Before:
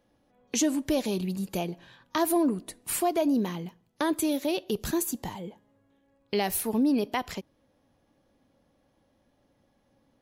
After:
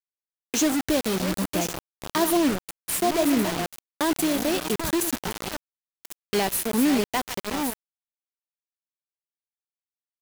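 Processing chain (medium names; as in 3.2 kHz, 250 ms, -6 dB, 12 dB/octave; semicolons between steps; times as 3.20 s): backward echo that repeats 557 ms, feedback 46%, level -9 dB; bit crusher 5-bit; trim +2.5 dB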